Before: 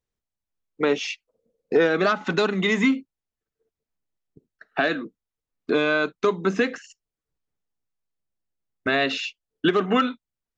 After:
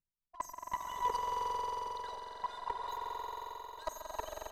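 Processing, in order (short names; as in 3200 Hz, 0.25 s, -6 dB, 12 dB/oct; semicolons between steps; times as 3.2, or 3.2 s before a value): spectral contrast raised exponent 2.2; notches 50/100/150/200/250/300/350/400 Hz; negative-ratio compressor -26 dBFS, ratio -0.5; one-sided clip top -29 dBFS, bottom -17 dBFS; resonator 420 Hz, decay 0.47 s, mix 90%; level quantiser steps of 21 dB; swelling echo 0.105 s, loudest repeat 8, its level -8 dB; speed mistake 33 rpm record played at 78 rpm; downsampling 32000 Hz; gain +10.5 dB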